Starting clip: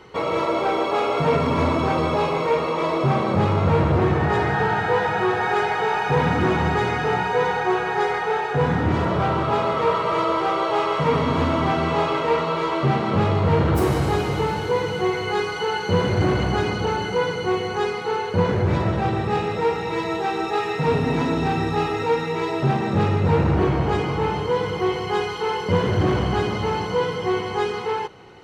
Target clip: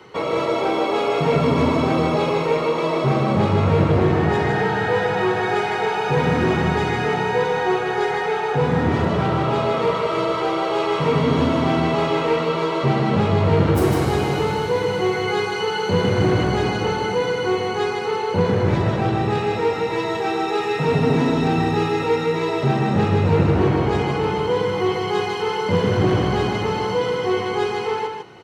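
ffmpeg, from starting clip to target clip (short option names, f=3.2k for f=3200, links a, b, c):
-filter_complex "[0:a]acrossover=split=180|730|1800[a][b][c][d];[c]alimiter=level_in=3.5dB:limit=-24dB:level=0:latency=1,volume=-3.5dB[e];[a][b][e][d]amix=inputs=4:normalize=0,highpass=94,aecho=1:1:153:0.562,volume=1.5dB"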